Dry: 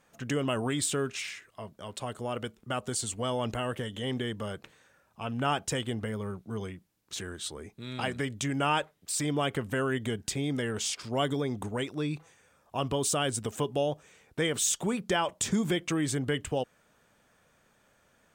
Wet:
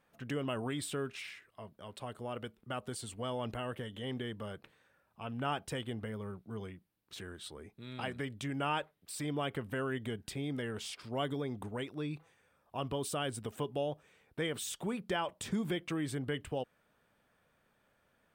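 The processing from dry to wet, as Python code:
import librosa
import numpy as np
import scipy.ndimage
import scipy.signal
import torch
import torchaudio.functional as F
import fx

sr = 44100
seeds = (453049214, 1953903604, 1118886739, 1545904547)

y = fx.peak_eq(x, sr, hz=6700.0, db=-11.0, octaves=0.68)
y = y * librosa.db_to_amplitude(-6.5)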